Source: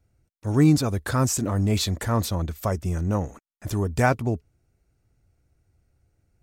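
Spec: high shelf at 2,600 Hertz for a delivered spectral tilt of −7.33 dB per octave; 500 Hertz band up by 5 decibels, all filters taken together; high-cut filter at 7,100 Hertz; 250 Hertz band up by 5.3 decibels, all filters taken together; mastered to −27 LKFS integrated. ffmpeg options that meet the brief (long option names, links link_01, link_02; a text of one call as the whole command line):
ffmpeg -i in.wav -af "lowpass=7100,equalizer=frequency=250:width_type=o:gain=5.5,equalizer=frequency=500:width_type=o:gain=5,highshelf=frequency=2600:gain=-6.5,volume=-6dB" out.wav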